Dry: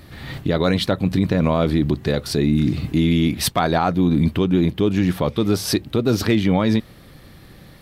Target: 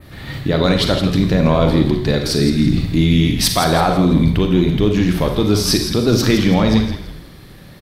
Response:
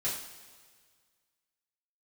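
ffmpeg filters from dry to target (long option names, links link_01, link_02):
-filter_complex "[0:a]asplit=5[link_01][link_02][link_03][link_04][link_05];[link_02]adelay=165,afreqshift=-130,volume=-9dB[link_06];[link_03]adelay=330,afreqshift=-260,volume=-18.1dB[link_07];[link_04]adelay=495,afreqshift=-390,volume=-27.2dB[link_08];[link_05]adelay=660,afreqshift=-520,volume=-36.4dB[link_09];[link_01][link_06][link_07][link_08][link_09]amix=inputs=5:normalize=0,asplit=2[link_10][link_11];[1:a]atrim=start_sample=2205,atrim=end_sample=6174,adelay=38[link_12];[link_11][link_12]afir=irnorm=-1:irlink=0,volume=-9.5dB[link_13];[link_10][link_13]amix=inputs=2:normalize=0,adynamicequalizer=threshold=0.01:dfrequency=5200:dqfactor=1.2:tfrequency=5200:tqfactor=1.2:attack=5:release=100:ratio=0.375:range=2.5:mode=boostabove:tftype=bell,volume=2dB"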